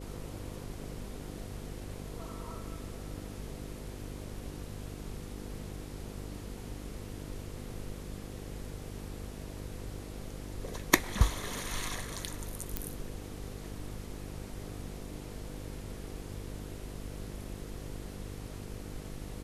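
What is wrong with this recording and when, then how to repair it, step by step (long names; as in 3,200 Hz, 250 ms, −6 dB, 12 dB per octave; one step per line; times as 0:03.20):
mains buzz 50 Hz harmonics 10 −44 dBFS
0:12.77: click −15 dBFS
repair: click removal
hum removal 50 Hz, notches 10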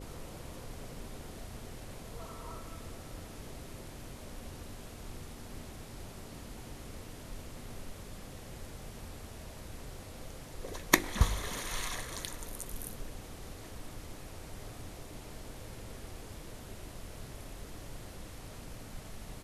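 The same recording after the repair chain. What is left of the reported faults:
none of them is left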